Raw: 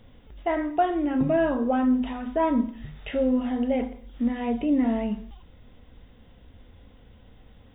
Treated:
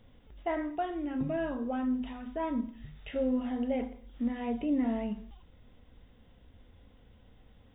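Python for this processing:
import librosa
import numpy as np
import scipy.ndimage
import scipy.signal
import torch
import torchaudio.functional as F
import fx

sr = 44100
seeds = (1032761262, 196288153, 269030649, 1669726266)

y = fx.peak_eq(x, sr, hz=680.0, db=-4.5, octaves=3.0, at=(0.75, 3.16))
y = fx.end_taper(y, sr, db_per_s=400.0)
y = y * librosa.db_to_amplitude(-6.5)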